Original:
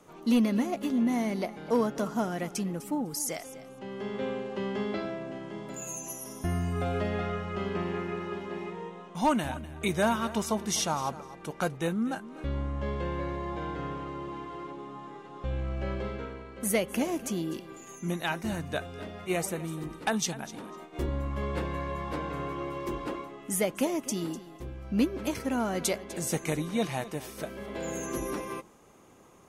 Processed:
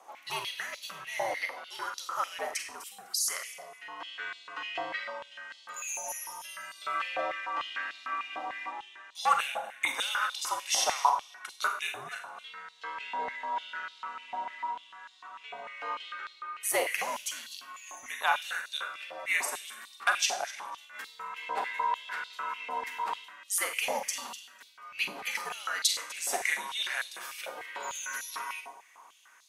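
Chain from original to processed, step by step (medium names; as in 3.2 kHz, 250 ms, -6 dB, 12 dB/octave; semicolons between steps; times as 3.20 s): frequency shift -93 Hz; Schroeder reverb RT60 0.56 s, combs from 32 ms, DRR 5 dB; step-sequenced high-pass 6.7 Hz 760–4000 Hz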